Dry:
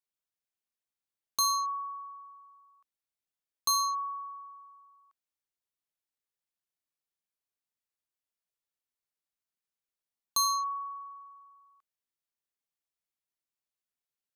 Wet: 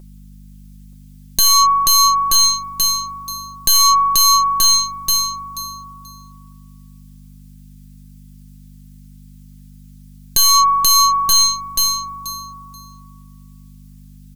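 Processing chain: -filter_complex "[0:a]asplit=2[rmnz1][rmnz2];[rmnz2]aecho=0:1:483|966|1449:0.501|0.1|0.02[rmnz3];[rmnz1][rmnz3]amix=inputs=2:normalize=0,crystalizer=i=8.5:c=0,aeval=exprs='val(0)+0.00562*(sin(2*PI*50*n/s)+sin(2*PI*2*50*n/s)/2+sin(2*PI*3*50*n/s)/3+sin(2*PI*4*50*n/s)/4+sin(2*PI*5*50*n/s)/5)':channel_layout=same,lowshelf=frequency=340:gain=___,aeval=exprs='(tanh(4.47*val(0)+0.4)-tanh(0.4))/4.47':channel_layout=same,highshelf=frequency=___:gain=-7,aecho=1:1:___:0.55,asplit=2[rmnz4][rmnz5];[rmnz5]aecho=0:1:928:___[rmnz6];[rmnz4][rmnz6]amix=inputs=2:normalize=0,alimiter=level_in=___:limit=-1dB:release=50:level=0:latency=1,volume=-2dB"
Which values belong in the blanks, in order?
-10.5, 7900, 5.6, 0.282, 18.5dB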